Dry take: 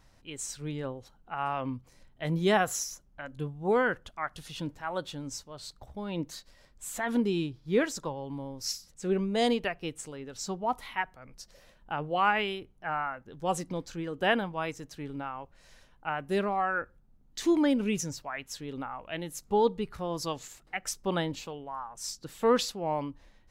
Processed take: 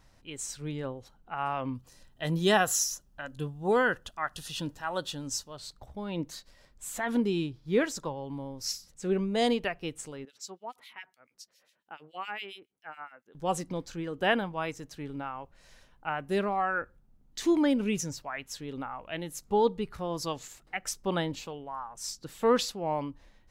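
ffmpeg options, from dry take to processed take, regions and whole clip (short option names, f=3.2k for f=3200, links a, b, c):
-filter_complex "[0:a]asettb=1/sr,asplit=3[a][b][c];[a]atrim=end=1.754[d];[b]atrim=start=1.75:end=5.57,asetpts=PTS-STARTPTS,afade=t=in:d=0.004:c=qsin,afade=t=out:st=3.816:d=0.004:c=qsin,asuperstop=centerf=2200:order=4:qfactor=6.8,deesser=0.55,highshelf=f=2.4k:g=7.5[e];[c]atrim=start=5.566[f];[d][e]acrossfade=d=0.004:c1=hsin:c2=qsin[g];[g][f]acrossfade=d=0.004:c1=qsin:c2=hsin,asettb=1/sr,asplit=3[h][i][j];[h]atrim=end=10.254[k];[i]atrim=start=10.25:end=13.35,asetpts=PTS-STARTPTS,afade=t=in:d=0.004:c=qsin,afade=t=out:st=3.096:d=0.004:c=qsin,highpass=390,equalizer=f=770:t=o:w=2.4:g=-9,acrossover=split=2100[l][m];[l]aeval=exprs='val(0)*(1-1/2+1/2*cos(2*PI*7.2*n/s))':c=same[n];[m]aeval=exprs='val(0)*(1-1/2-1/2*cos(2*PI*7.2*n/s))':c=same[o];[n][o]amix=inputs=2:normalize=0[p];[j]atrim=start=13.346[q];[k][p]acrossfade=d=0.004:c1=hsin:c2=qsin[r];[r][q]acrossfade=d=0.004:c1=qsin:c2=hsin"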